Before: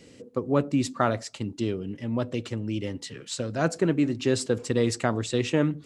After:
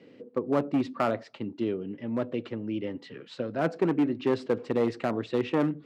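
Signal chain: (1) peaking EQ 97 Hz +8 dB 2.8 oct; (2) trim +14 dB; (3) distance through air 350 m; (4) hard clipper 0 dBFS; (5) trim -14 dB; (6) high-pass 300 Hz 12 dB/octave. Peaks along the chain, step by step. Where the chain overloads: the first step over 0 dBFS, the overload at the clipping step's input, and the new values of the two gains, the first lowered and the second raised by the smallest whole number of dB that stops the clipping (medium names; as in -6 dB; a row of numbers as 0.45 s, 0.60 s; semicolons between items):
-6.0 dBFS, +8.0 dBFS, +7.0 dBFS, 0.0 dBFS, -14.0 dBFS, -12.5 dBFS; step 2, 7.0 dB; step 2 +7 dB, step 5 -7 dB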